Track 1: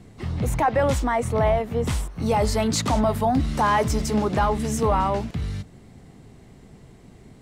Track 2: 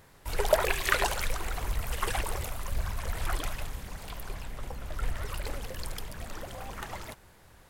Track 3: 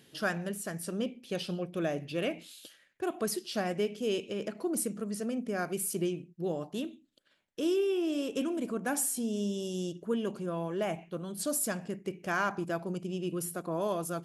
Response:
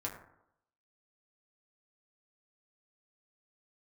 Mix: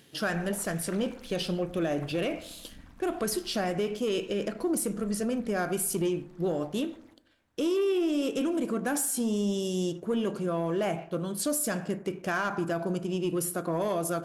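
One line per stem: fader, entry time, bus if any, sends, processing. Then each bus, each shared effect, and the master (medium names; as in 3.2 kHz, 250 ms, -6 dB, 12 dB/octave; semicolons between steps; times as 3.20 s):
mute
-18.0 dB, 0.00 s, send -10.5 dB, treble shelf 9.6 kHz -11.5 dB; AM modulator 220 Hz, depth 80%
0.0 dB, 0.00 s, send -8 dB, waveshaping leveller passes 1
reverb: on, RT60 0.80 s, pre-delay 5 ms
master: peak limiter -21.5 dBFS, peak gain reduction 6 dB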